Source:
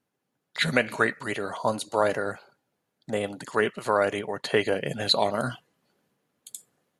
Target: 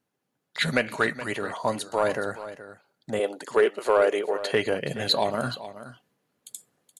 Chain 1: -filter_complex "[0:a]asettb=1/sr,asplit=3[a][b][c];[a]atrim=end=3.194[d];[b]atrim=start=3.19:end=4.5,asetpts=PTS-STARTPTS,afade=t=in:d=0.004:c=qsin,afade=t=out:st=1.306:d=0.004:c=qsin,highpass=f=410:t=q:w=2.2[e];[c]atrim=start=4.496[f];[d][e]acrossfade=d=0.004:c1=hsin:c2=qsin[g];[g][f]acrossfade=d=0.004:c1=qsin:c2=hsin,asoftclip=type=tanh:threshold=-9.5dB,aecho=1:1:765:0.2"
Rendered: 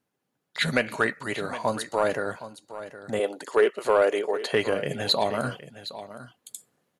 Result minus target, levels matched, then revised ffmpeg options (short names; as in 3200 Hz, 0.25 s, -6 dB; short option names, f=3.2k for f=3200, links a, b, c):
echo 0.342 s late
-filter_complex "[0:a]asettb=1/sr,asplit=3[a][b][c];[a]atrim=end=3.194[d];[b]atrim=start=3.19:end=4.5,asetpts=PTS-STARTPTS,afade=t=in:d=0.004:c=qsin,afade=t=out:st=1.306:d=0.004:c=qsin,highpass=f=410:t=q:w=2.2[e];[c]atrim=start=4.496[f];[d][e]acrossfade=d=0.004:c1=hsin:c2=qsin[g];[g][f]acrossfade=d=0.004:c1=qsin:c2=hsin,asoftclip=type=tanh:threshold=-9.5dB,aecho=1:1:423:0.2"